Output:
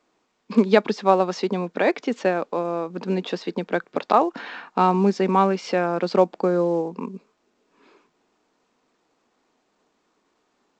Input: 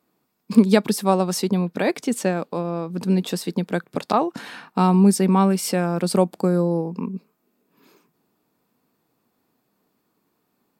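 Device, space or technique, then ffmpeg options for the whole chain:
telephone: -af "highpass=330,lowpass=3.1k,volume=3dB" -ar 16000 -c:a pcm_alaw

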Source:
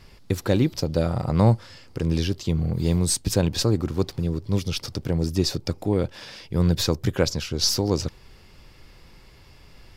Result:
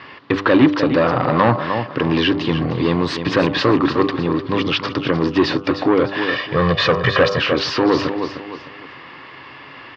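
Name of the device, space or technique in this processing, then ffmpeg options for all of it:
overdrive pedal into a guitar cabinet: -filter_complex "[0:a]highshelf=f=5.3k:g=-11.5,bandreject=f=98.66:t=h:w=4,bandreject=f=197.32:t=h:w=4,bandreject=f=295.98:t=h:w=4,bandreject=f=394.64:t=h:w=4,bandreject=f=493.3:t=h:w=4,bandreject=f=591.96:t=h:w=4,bandreject=f=690.62:t=h:w=4,bandreject=f=789.28:t=h:w=4,bandreject=f=887.94:t=h:w=4,bandreject=f=986.6:t=h:w=4,bandreject=f=1.08526k:t=h:w=4,bandreject=f=1.18392k:t=h:w=4,bandreject=f=1.28258k:t=h:w=4,bandreject=f=1.38124k:t=h:w=4,bandreject=f=1.4799k:t=h:w=4,asettb=1/sr,asplit=3[a][b][c];[a]atrim=end=6.284[d];[b]atrim=start=6.28:end=7.39,asetpts=PTS-STARTPTS,afade=t=in:d=0.004:c=qsin,afade=t=out:st=1.106:d=0.004:c=qsin,aecho=1:1:1.7:0.91,atrim=end_sample=48951[e];[c]atrim=start=7.386[f];[d][e]acrossfade=d=0.004:c1=hsin:c2=qsin[g];[g][f]acrossfade=d=0.004:c1=qsin:c2=hsin,aecho=1:1:304|608|912:0.251|0.0804|0.0257,asplit=2[h][i];[i]highpass=f=720:p=1,volume=25dB,asoftclip=type=tanh:threshold=-4dB[j];[h][j]amix=inputs=2:normalize=0,lowpass=f=3.5k:p=1,volume=-6dB,highpass=100,equalizer=f=130:t=q:w=4:g=4,equalizer=f=200:t=q:w=4:g=-5,equalizer=f=280:t=q:w=4:g=10,equalizer=f=1.1k:t=q:w=4:g=10,equalizer=f=1.8k:t=q:w=4:g=8,equalizer=f=2.9k:t=q:w=4:g=5,lowpass=f=4.3k:w=0.5412,lowpass=f=4.3k:w=1.3066,volume=-2dB"

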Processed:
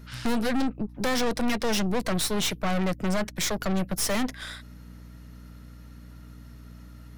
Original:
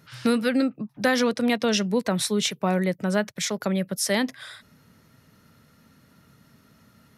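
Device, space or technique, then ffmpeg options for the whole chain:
valve amplifier with mains hum: -af "aeval=exprs='(tanh(35.5*val(0)+0.8)-tanh(0.8))/35.5':c=same,aeval=exprs='val(0)+0.00282*(sin(2*PI*60*n/s)+sin(2*PI*2*60*n/s)/2+sin(2*PI*3*60*n/s)/3+sin(2*PI*4*60*n/s)/4+sin(2*PI*5*60*n/s)/5)':c=same,volume=7dB"

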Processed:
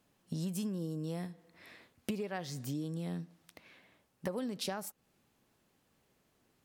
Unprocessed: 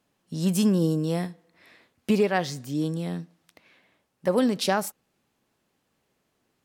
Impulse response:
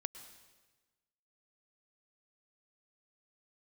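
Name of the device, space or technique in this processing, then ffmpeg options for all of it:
ASMR close-microphone chain: -af "lowshelf=f=140:g=5,acompressor=threshold=-34dB:ratio=8,highshelf=f=11k:g=4.5,volume=-1dB"

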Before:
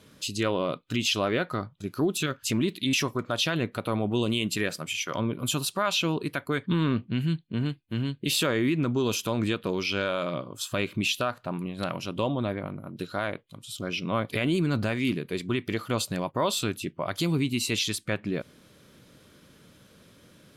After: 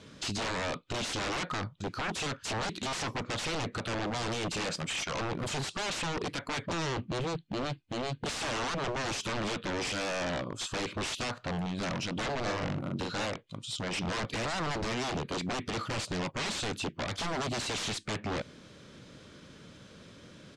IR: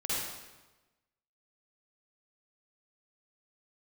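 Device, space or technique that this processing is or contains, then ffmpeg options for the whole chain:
synthesiser wavefolder: -filter_complex "[0:a]aeval=exprs='0.0266*(abs(mod(val(0)/0.0266+3,4)-2)-1)':c=same,lowpass=f=7.6k:w=0.5412,lowpass=f=7.6k:w=1.3066,asplit=3[a][b][c];[a]afade=t=out:st=12.45:d=0.02[d];[b]asplit=2[e][f];[f]adelay=43,volume=-2.5dB[g];[e][g]amix=inputs=2:normalize=0,afade=t=in:st=12.45:d=0.02,afade=t=out:st=13.25:d=0.02[h];[c]afade=t=in:st=13.25:d=0.02[i];[d][h][i]amix=inputs=3:normalize=0,volume=3.5dB"

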